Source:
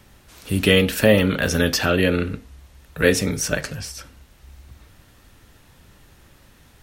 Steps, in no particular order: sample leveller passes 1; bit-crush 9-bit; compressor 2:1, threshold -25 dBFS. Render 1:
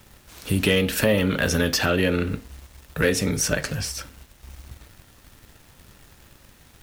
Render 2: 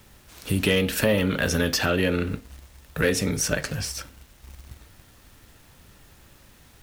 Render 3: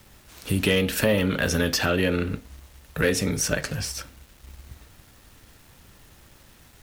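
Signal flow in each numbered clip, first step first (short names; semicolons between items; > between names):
bit-crush > compressor > sample leveller; bit-crush > sample leveller > compressor; sample leveller > bit-crush > compressor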